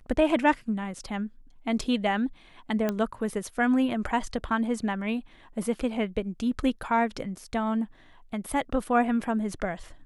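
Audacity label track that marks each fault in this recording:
1.840000	1.840000	gap 3.1 ms
2.890000	2.890000	pop -14 dBFS

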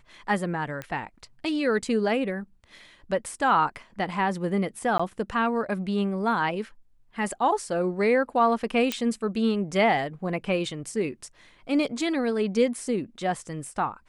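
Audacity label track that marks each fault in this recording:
0.820000	0.820000	pop -20 dBFS
4.980000	5.000000	gap 15 ms
8.920000	8.920000	pop -10 dBFS

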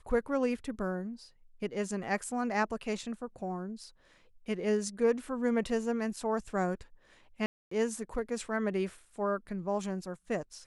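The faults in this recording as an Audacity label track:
7.460000	7.710000	gap 0.254 s

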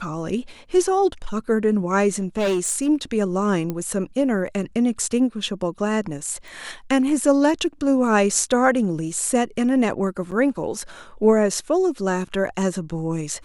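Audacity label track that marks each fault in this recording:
2.140000	2.890000	clipped -17.5 dBFS
3.700000	3.700000	pop -14 dBFS
6.480000	6.480000	pop
10.310000	10.320000	gap 7.5 ms

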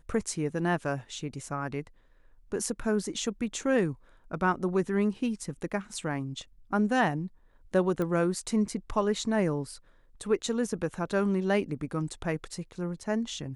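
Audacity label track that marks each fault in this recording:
8.020000	8.020000	pop -20 dBFS

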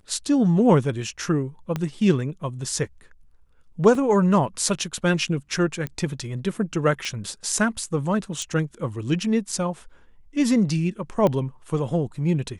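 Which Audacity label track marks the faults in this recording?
1.760000	1.760000	pop -13 dBFS
3.950000	3.950000	gap 2.5 ms
5.870000	5.870000	pop -16 dBFS
7.050000	7.050000	pop -16 dBFS
8.420000	8.420000	pop
11.270000	11.270000	pop -11 dBFS

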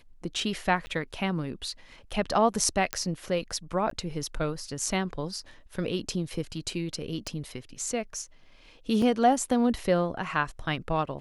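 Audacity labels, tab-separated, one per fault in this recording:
0.860000	0.870000	gap 10 ms
2.930000	2.930000	pop -10 dBFS
3.900000	3.910000	gap 13 ms
7.270000	7.270000	pop -19 dBFS
9.020000	9.020000	gap 2.7 ms

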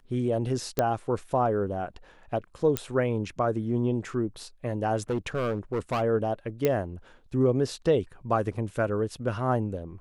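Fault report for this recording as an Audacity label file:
0.790000	0.790000	pop -10 dBFS
2.770000	2.770000	pop -9 dBFS
5.100000	6.020000	clipped -23.5 dBFS
6.650000	6.650000	pop -11 dBFS

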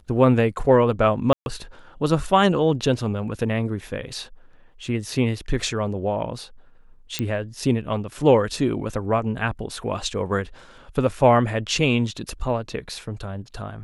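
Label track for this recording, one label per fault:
1.330000	1.460000	gap 0.131 s
7.190000	7.190000	pop -9 dBFS

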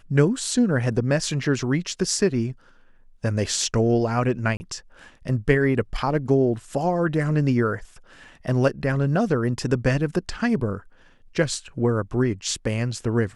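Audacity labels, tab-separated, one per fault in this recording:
4.570000	4.600000	gap 30 ms

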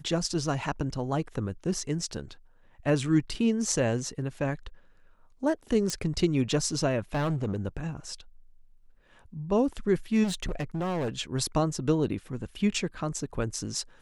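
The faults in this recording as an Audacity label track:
5.900000	5.900000	pop -15 dBFS
7.140000	7.570000	clipped -24.5 dBFS
10.230000	11.090000	clipped -27 dBFS

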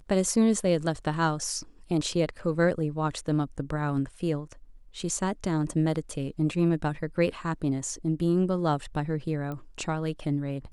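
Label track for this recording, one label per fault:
9.520000	9.520000	pop -24 dBFS

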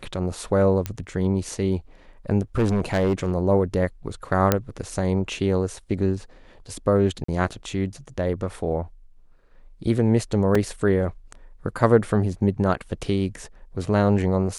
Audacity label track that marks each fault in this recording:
0.860000	0.860000	pop -12 dBFS
2.580000	3.350000	clipped -16 dBFS
4.520000	4.520000	pop -3 dBFS
7.240000	7.280000	gap 44 ms
10.550000	10.550000	gap 3.7 ms

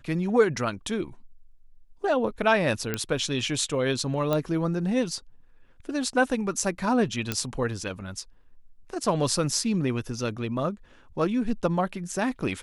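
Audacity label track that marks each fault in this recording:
2.940000	2.940000	pop -12 dBFS
4.330000	4.330000	pop -13 dBFS
7.320000	7.320000	pop -10 dBFS

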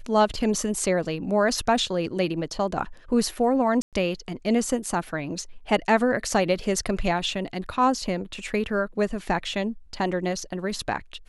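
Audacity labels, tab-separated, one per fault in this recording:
3.820000	3.930000	gap 0.107 s

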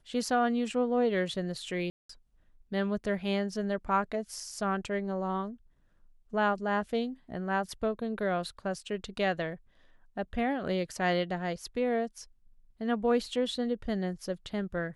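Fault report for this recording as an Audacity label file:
1.900000	2.090000	gap 0.194 s

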